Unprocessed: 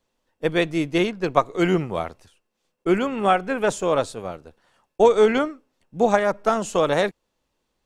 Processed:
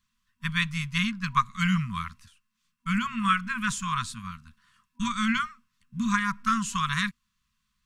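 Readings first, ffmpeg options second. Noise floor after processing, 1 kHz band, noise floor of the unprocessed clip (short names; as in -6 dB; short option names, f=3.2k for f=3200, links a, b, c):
-78 dBFS, -4.5 dB, -76 dBFS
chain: -af "afftfilt=real='re*(1-between(b*sr/4096,240,970))':imag='im*(1-between(b*sr/4096,240,970))':win_size=4096:overlap=0.75"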